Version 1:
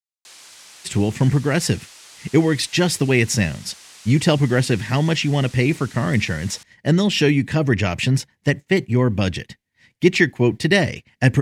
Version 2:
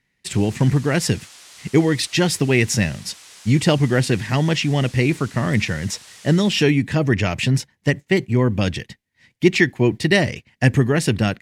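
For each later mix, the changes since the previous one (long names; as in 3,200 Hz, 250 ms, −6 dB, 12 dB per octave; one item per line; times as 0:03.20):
speech: entry −0.60 s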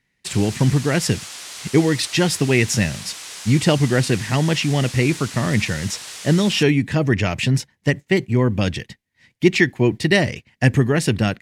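background +9.0 dB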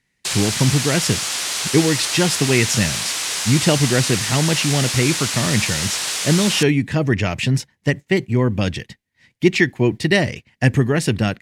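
background +11.5 dB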